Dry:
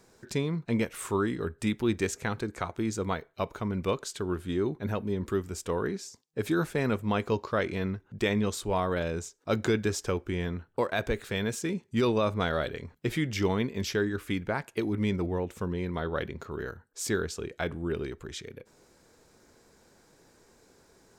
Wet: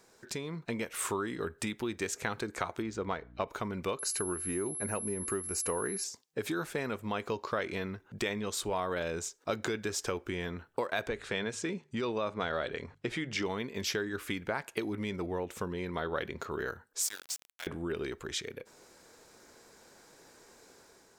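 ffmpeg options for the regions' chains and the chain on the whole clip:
-filter_complex "[0:a]asettb=1/sr,asplit=3[a][b][c];[a]atrim=end=2.824[d];[b]atrim=start=2.82:end=3.48,asetpts=PTS-STARTPTS,afade=t=in:d=0.004:c=qsin,afade=t=out:st=0.656:d=0.004:c=qsin,highshelf=f=3.8k:g=-7.5,adynamicsmooth=sensitivity=7:basefreq=5.5k,aeval=exprs='val(0)+0.00398*(sin(2*PI*60*n/s)+sin(2*PI*2*60*n/s)/2+sin(2*PI*3*60*n/s)/3+sin(2*PI*4*60*n/s)/4+sin(2*PI*5*60*n/s)/5)':c=same[e];[c]atrim=start=3.476[f];[d][e]acrossfade=d=0.004:c1=hsin:c2=qsin[g];[g][f]acrossfade=d=0.004:c1=qsin:c2=hsin,asettb=1/sr,asplit=3[h][i][j];[h]atrim=end=3.994[k];[i]atrim=start=3.99:end=6.04,asetpts=PTS-STARTPTS,afade=t=in:d=0.004:c=qsin,afade=t=out:st=2.046:d=0.004:c=qsin,aeval=exprs='val(0)+0.0126*sin(2*PI*11000*n/s)':c=same,asuperstop=centerf=3400:order=4:qfactor=3.5[l];[j]atrim=start=6.036[m];[k][l]acrossfade=d=0.004:c1=hsin:c2=qsin[n];[n][m]acrossfade=d=0.004:c1=qsin:c2=hsin,asettb=1/sr,asplit=3[o][p][q];[o]atrim=end=11.074[r];[p]atrim=start=11.07:end=13.46,asetpts=PTS-STARTPTS,afade=t=in:d=0.004:c=qsin,afade=t=out:st=2.386:d=0.004:c=qsin,lowpass=f=9.5k:w=0.5412,lowpass=f=9.5k:w=1.3066,highshelf=f=5.3k:g=-7.5,bandreject=f=50:t=h:w=6,bandreject=f=100:t=h:w=6,bandreject=f=150:t=h:w=6[s];[q]atrim=start=13.456[t];[r][s]acrossfade=d=0.004:c1=hsin:c2=qsin[u];[u][t]acrossfade=d=0.004:c1=qsin:c2=hsin,asettb=1/sr,asplit=3[v][w][x];[v]atrim=end=17.024[y];[w]atrim=start=17.02:end=17.67,asetpts=PTS-STARTPTS,afade=t=in:d=0.004:c=qsin,afade=t=out:st=0.646:d=0.004:c=qsin,aderivative,aeval=exprs='val(0)*gte(abs(val(0)),0.0075)':c=same[z];[x]atrim=start=17.666[aa];[y][z]acrossfade=d=0.004:c1=hsin:c2=qsin[ab];[ab][aa]acrossfade=d=0.004:c1=qsin:c2=hsin,acompressor=threshold=-32dB:ratio=6,lowshelf=f=270:g=-11,dynaudnorm=f=180:g=5:m=5dB"

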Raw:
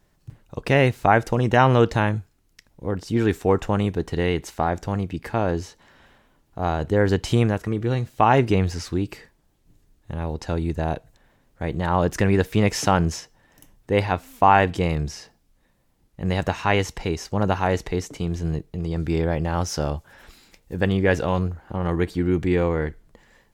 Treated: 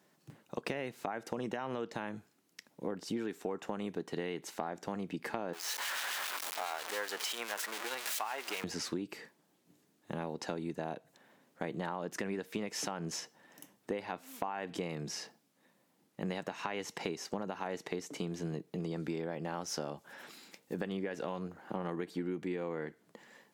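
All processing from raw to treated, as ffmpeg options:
-filter_complex "[0:a]asettb=1/sr,asplit=3[a][b][c];[a]atrim=end=5.534[d];[b]atrim=start=5.53:end=8.64,asetpts=PTS-STARTPTS,afade=t=in:d=0.004:c=qsin,afade=t=out:st=3.106:d=0.004:c=qsin,aeval=exprs='val(0)+0.5*0.0944*sgn(val(0))':c=same,highpass=1k,acrossover=split=2000[e][f];[e]aeval=exprs='val(0)*(1-0.5/2+0.5/2*cos(2*PI*7.4*n/s))':c=same[g];[f]aeval=exprs='val(0)*(1-0.5/2-0.5/2*cos(2*PI*7.4*n/s))':c=same[h];[g][h]amix=inputs=2:normalize=0[i];[c]atrim=start=8.636[j];[d][i]acrossfade=d=0.004:c1=hsin:c2=qsin[k];[k][j]acrossfade=d=0.004:c1=qsin:c2=hsin,highpass=f=180:w=0.5412,highpass=f=180:w=1.3066,alimiter=limit=-12dB:level=0:latency=1:release=166,acompressor=threshold=-32dB:ratio=10,volume=-1.5dB"

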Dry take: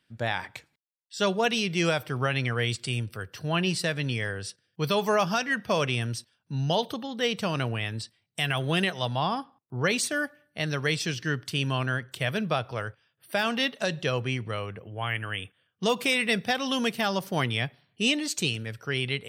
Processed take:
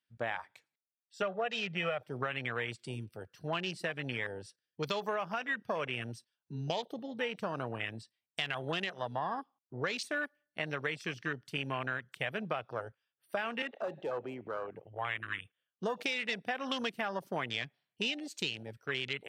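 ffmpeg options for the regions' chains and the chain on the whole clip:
-filter_complex "[0:a]asettb=1/sr,asplit=3[a][b][c];[a]atrim=end=1.224[d];[b]atrim=start=1.22:end=2.03,asetpts=PTS-STARTPTS,afade=t=in:d=0.004:c=qsin,afade=t=out:st=0.806:d=0.004:c=qsin,lowpass=3.2k,aecho=1:1:1.6:0.76,atrim=end_sample=35721[e];[c]atrim=start=2.026[f];[d][e]acrossfade=d=0.004:c1=hsin:c2=qsin[g];[g][f]acrossfade=d=0.004:c1=qsin:c2=hsin,asettb=1/sr,asplit=3[h][i][j];[h]atrim=end=13.624[k];[i]atrim=start=13.62:end=14.75,asetpts=PTS-STARTPTS,afade=t=in:d=0.004:c=qsin,afade=t=out:st=1.126:d=0.004:c=qsin,acrossover=split=240 3000:gain=0.224 1 0.0891[l][m][n];[l][m][n]amix=inputs=3:normalize=0,acompressor=mode=upward:threshold=-31dB:ratio=2.5:attack=3.2:release=140:knee=2.83:detection=peak,volume=27dB,asoftclip=hard,volume=-27dB[o];[j]atrim=start=14.746[p];[k][o]acrossfade=d=0.004:c1=hsin:c2=qsin[q];[q][p]acrossfade=d=0.004:c1=qsin:c2=hsin,afwtdn=0.0251,highpass=f=460:p=1,acompressor=threshold=-31dB:ratio=6"

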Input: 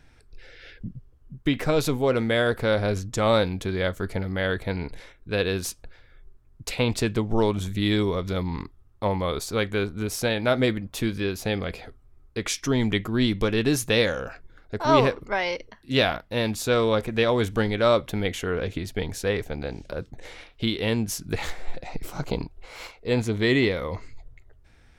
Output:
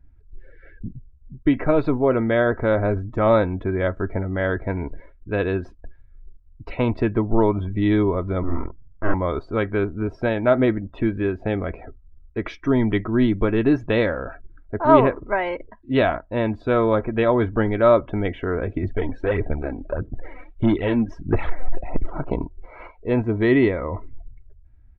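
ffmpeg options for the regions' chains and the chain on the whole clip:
-filter_complex "[0:a]asettb=1/sr,asplit=3[a][b][c];[a]atrim=end=8.434[d];[b]atrim=start=8.43:end=9.14,asetpts=PTS-STARTPTS,afade=t=in:d=0.004:c=qsin,afade=t=out:st=0.706:d=0.004:c=qsin,lowpass=2.4k,aeval=exprs='abs(val(0))':c=same,asplit=2[e][f];[f]adelay=47,volume=-2.5dB[g];[e][g]amix=inputs=2:normalize=0,atrim=end_sample=31311[h];[c]atrim=start=9.136[i];[d][h]acrossfade=d=0.004:c1=hsin:c2=qsin[j];[j][i]acrossfade=d=0.004:c1=qsin:c2=hsin,asettb=1/sr,asplit=3[k][l][m];[k]atrim=end=18.834[n];[l]atrim=start=18.83:end=22.18,asetpts=PTS-STARTPTS,afade=t=in:d=0.004:c=qsin,afade=t=out:st=3.346:d=0.004:c=qsin,aphaser=in_gain=1:out_gain=1:delay=4:decay=0.56:speed=1.6:type=sinusoidal,asoftclip=type=hard:threshold=-16.5dB[o];[m]atrim=start=22.176[p];[n][o]acrossfade=d=0.004:c1=hsin:c2=qsin[q];[q][p]acrossfade=d=0.004:c1=qsin:c2=hsin,lowpass=1.6k,aecho=1:1:3.1:0.36,afftdn=nr=19:nf=-47,volume=4dB"

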